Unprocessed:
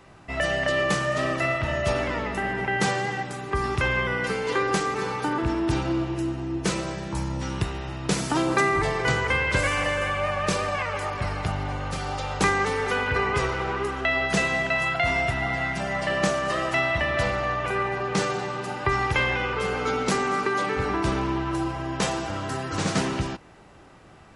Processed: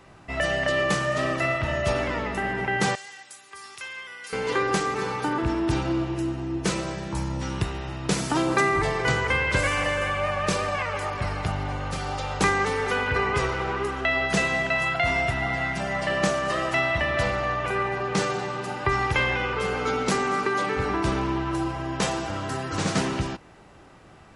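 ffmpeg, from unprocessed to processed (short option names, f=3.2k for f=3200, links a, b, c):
-filter_complex "[0:a]asettb=1/sr,asplit=3[a][b][c];[a]atrim=end=2.954[d];[b]atrim=start=2.95:end=4.33,asetpts=PTS-STARTPTS,afade=t=in:d=0.004:c=qsin,afade=t=out:st=1.376:d=0.004:c=qsin,aderivative[e];[c]atrim=start=4.326[f];[d][e]acrossfade=d=0.004:c1=hsin:c2=qsin[g];[g][f]acrossfade=d=0.004:c1=qsin:c2=hsin"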